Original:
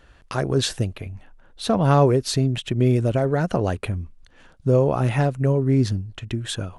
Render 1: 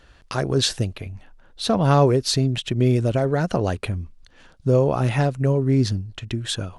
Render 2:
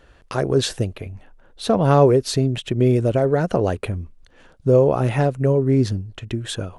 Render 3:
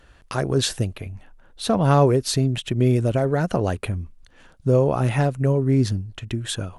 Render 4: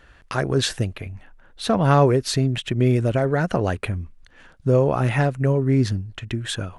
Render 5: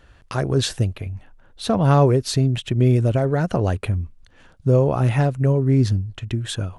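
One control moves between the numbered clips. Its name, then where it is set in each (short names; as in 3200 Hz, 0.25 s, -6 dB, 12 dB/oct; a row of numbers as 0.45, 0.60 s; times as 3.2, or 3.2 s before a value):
bell, frequency: 4700, 460, 13000, 1800, 95 Hz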